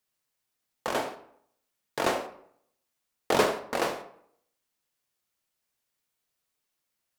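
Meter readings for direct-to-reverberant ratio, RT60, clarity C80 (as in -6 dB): 5.5 dB, 0.65 s, 14.5 dB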